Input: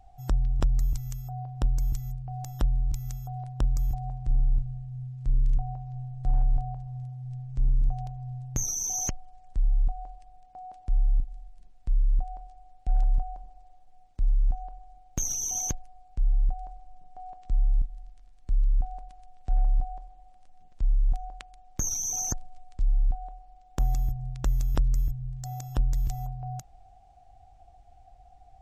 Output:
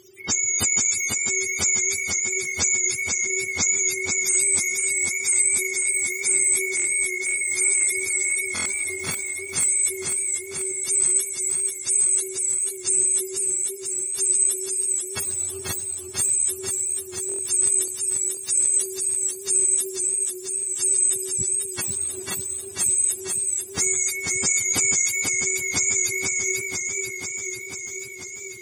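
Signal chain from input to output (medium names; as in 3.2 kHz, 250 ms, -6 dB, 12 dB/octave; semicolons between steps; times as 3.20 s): spectrum inverted on a logarithmic axis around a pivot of 530 Hz; buffer glitch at 6.75/8.54/17.27 s, samples 1024, times 4; modulated delay 491 ms, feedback 72%, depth 63 cents, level -4 dB; trim +7 dB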